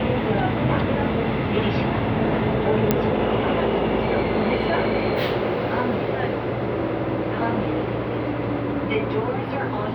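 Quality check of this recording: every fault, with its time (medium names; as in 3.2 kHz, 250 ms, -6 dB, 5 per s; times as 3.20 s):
2.91 s: pop -4 dBFS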